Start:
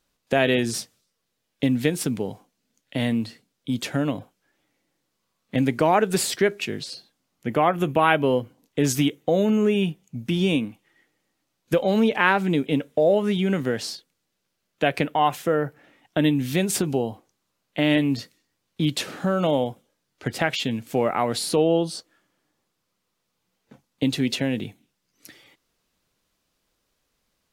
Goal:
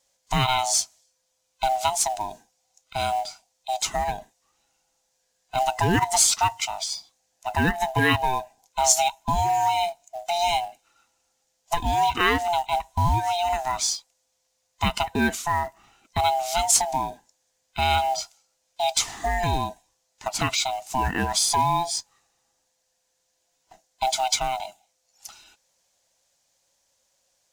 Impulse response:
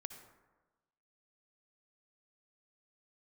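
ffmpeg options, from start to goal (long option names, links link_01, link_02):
-filter_complex "[0:a]afftfilt=real='real(if(lt(b,1008),b+24*(1-2*mod(floor(b/24),2)),b),0)':imag='imag(if(lt(b,1008),b+24*(1-2*mod(floor(b/24),2)),b),0)':win_size=2048:overlap=0.75,equalizer=frequency=6700:width_type=o:width=1.1:gain=14.5,asplit=2[link_01][link_02];[link_02]acrusher=bits=3:mode=log:mix=0:aa=0.000001,volume=-4.5dB[link_03];[link_01][link_03]amix=inputs=2:normalize=0,volume=-6.5dB"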